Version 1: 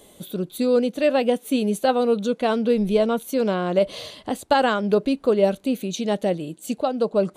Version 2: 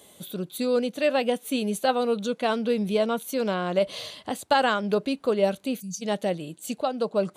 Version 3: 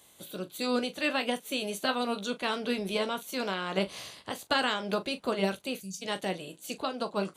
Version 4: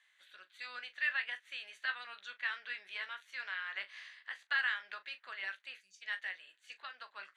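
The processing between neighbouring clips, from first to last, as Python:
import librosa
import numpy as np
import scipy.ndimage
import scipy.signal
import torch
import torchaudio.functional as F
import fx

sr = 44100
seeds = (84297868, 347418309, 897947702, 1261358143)

y1 = fx.spec_box(x, sr, start_s=5.8, length_s=0.22, low_hz=200.0, high_hz=4500.0, gain_db=-25)
y1 = scipy.signal.sosfilt(scipy.signal.butter(2, 100.0, 'highpass', fs=sr, output='sos'), y1)
y1 = fx.peak_eq(y1, sr, hz=320.0, db=-6.0, octaves=2.2)
y2 = fx.spec_clip(y1, sr, under_db=14)
y2 = fx.room_early_taps(y2, sr, ms=(16, 41), db=(-10.0, -14.5))
y2 = F.gain(torch.from_numpy(y2), -6.5).numpy()
y3 = fx.ladder_bandpass(y2, sr, hz=1900.0, resonance_pct=75)
y3 = F.gain(torch.from_numpy(y3), 3.0).numpy()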